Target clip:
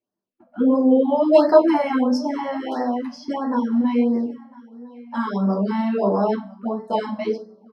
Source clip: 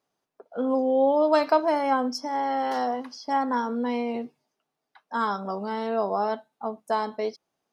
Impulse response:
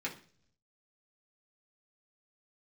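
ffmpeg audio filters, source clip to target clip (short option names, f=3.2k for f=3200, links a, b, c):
-filter_complex "[0:a]agate=range=-14dB:threshold=-46dB:ratio=16:detection=peak,lowshelf=f=490:g=9,asettb=1/sr,asplit=3[a][b][c];[a]atrim=end=2.494[d];[b]atrim=start=2.49:end=5.33,asetpts=PTS-STARTPTS,afade=t=in:d=0.004:c=qsin,afade=t=out:st=2.836:d=0.004:c=qsin,acompressor=threshold=-25dB:ratio=2[e];[c]atrim=start=5.326[f];[d][e]acrossfade=d=0.004:c1=hsin:c2=qsin[g];[g][f]acrossfade=d=0.004:c1=qsin:c2=hsin,flanger=delay=0.1:depth=9.2:regen=-42:speed=1.2:shape=sinusoidal,aecho=1:1:1003|2006:0.0794|0.0143[h];[1:a]atrim=start_sample=2205,asetrate=52920,aresample=44100[i];[h][i]afir=irnorm=-1:irlink=0,afftfilt=real='re*(1-between(b*sr/1024,360*pow(3000/360,0.5+0.5*sin(2*PI*1.5*pts/sr))/1.41,360*pow(3000/360,0.5+0.5*sin(2*PI*1.5*pts/sr))*1.41))':imag='im*(1-between(b*sr/1024,360*pow(3000/360,0.5+0.5*sin(2*PI*1.5*pts/sr))/1.41,360*pow(3000/360,0.5+0.5*sin(2*PI*1.5*pts/sr))*1.41))':win_size=1024:overlap=0.75,volume=6dB"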